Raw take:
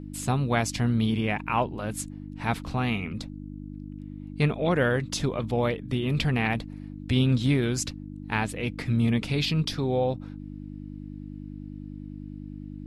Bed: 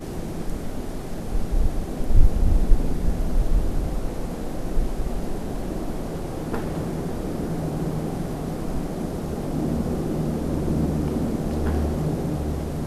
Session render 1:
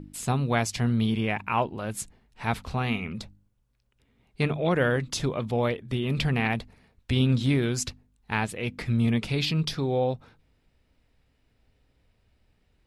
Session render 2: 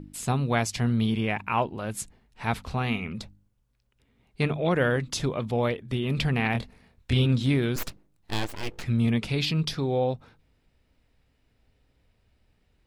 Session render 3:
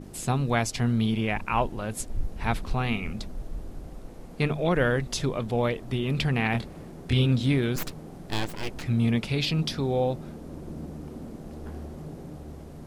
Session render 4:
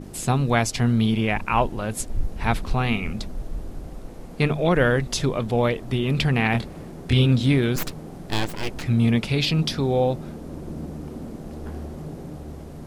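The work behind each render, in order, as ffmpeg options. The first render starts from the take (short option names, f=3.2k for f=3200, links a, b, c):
-af "bandreject=f=50:t=h:w=4,bandreject=f=100:t=h:w=4,bandreject=f=150:t=h:w=4,bandreject=f=200:t=h:w=4,bandreject=f=250:t=h:w=4,bandreject=f=300:t=h:w=4"
-filter_complex "[0:a]asettb=1/sr,asplit=3[a][b][c];[a]atrim=end=6.524[d];[b]atrim=start=6.52:end=7.26,asetpts=PTS-STARTPTS,afade=t=in:d=0.004:c=qsin,afade=t=out:st=0.736:d=0.004:c=qsin,asplit=2[e][f];[f]adelay=25,volume=-4dB[g];[e][g]amix=inputs=2:normalize=0,atrim=end_sample=32634[h];[c]atrim=start=7.256[i];[d][h]acrossfade=d=0.004:c1=hsin:c2=qsin[j];[j][i]acrossfade=d=0.004:c1=qsin:c2=hsin,asettb=1/sr,asplit=3[k][l][m];[k]atrim=end=7.764[n];[l]atrim=start=7.76:end=8.84,asetpts=PTS-STARTPTS,afade=t=in:d=0.004:c=qsin,afade=t=out:st=1.076:d=0.004:c=qsin,aeval=exprs='abs(val(0))':c=same[o];[m]atrim=start=8.836[p];[n][o]acrossfade=d=0.004:c1=hsin:c2=qsin[q];[q][p]acrossfade=d=0.004:c1=qsin:c2=hsin"
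-filter_complex "[1:a]volume=-15dB[a];[0:a][a]amix=inputs=2:normalize=0"
-af "volume=4.5dB"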